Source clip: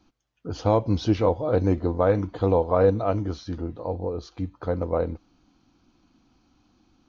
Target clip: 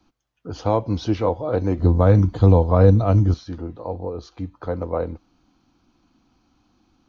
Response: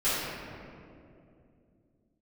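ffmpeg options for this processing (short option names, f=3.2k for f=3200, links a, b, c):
-filter_complex "[0:a]asettb=1/sr,asplit=3[a][b][c];[a]atrim=end=1.794[d];[b]atrim=start=1.79:end=3.34,asetpts=PTS-STARTPTS,afade=t=in:d=0.004:c=qsin,afade=t=out:st=1.546:d=0.004:c=qsin,bass=f=250:g=14,treble=f=4k:g=10[e];[c]atrim=start=3.336[f];[d][e]acrossfade=d=0.004:c1=hsin:c2=qsin[g];[g][f]acrossfade=d=0.004:c1=qsin:c2=hsin,acrossover=split=290|600|1100[h][i][j][k];[j]crystalizer=i=9.5:c=0[l];[h][i][l][k]amix=inputs=4:normalize=0"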